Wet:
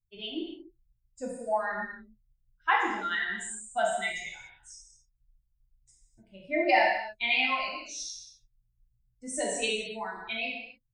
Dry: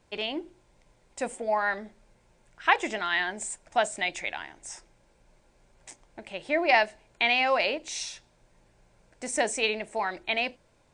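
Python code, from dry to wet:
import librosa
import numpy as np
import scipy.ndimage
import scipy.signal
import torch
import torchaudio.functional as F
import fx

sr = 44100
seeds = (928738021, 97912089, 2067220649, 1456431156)

y = fx.bin_expand(x, sr, power=2.0)
y = fx.fixed_phaser(y, sr, hz=2400.0, stages=8, at=(7.45, 7.89))
y = fx.rev_gated(y, sr, seeds[0], gate_ms=320, shape='falling', drr_db=-4.0)
y = y * librosa.db_to_amplitude(-3.5)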